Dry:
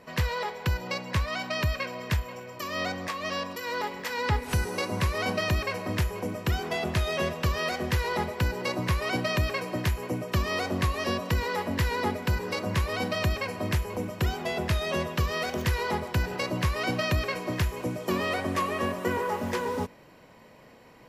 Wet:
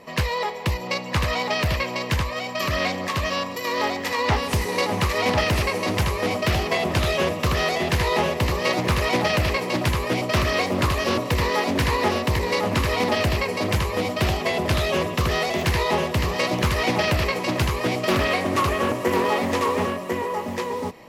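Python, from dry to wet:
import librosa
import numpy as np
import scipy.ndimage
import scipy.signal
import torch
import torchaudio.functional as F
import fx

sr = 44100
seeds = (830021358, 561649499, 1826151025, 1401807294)

y = fx.low_shelf(x, sr, hz=130.0, db=-6.0)
y = fx.notch(y, sr, hz=1500.0, q=5.5)
y = y + 10.0 ** (-3.5 / 20.0) * np.pad(y, (int(1047 * sr / 1000.0), 0))[:len(y)]
y = fx.doppler_dist(y, sr, depth_ms=0.36)
y = y * 10.0 ** (6.5 / 20.0)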